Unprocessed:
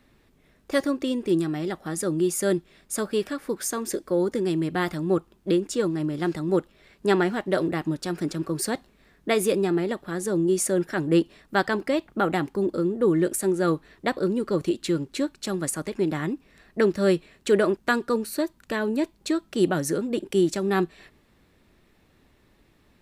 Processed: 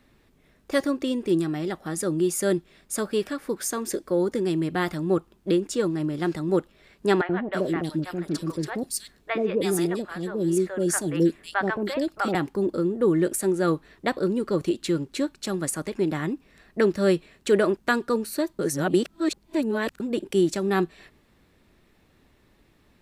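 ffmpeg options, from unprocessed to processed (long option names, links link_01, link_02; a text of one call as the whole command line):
ffmpeg -i in.wav -filter_complex "[0:a]asettb=1/sr,asplit=3[link_01][link_02][link_03];[link_01]atrim=end=7.214[link_04];[link_02]atrim=start=7.21:end=12.35,asetpts=PTS-STARTPTS,afade=type=in:duration=0.004:curve=qsin,afade=type=out:start_time=5.136:duration=0.004:curve=qsin,acrossover=split=620|2900[link_05][link_06][link_07];[link_05]adelay=80[link_08];[link_07]adelay=320[link_09];[link_08][link_06][link_09]amix=inputs=3:normalize=0,atrim=end_sample=226674[link_10];[link_03]atrim=start=12.346[link_11];[link_04][link_10]acrossfade=duration=0.004:curve1=hsin:curve2=qsin[link_12];[link_12][link_11]acrossfade=duration=0.004:curve1=qsin:curve2=hsin,asplit=3[link_13][link_14][link_15];[link_13]atrim=end=18.592[link_16];[link_14]atrim=start=18.588:end=20.002,asetpts=PTS-STARTPTS,areverse[link_17];[link_15]atrim=start=19.998[link_18];[link_16][link_17]acrossfade=duration=0.004:curve1=hsin:curve2=hsin[link_19];[link_19][link_18]acrossfade=duration=0.004:curve1=hsin:curve2=hsin" out.wav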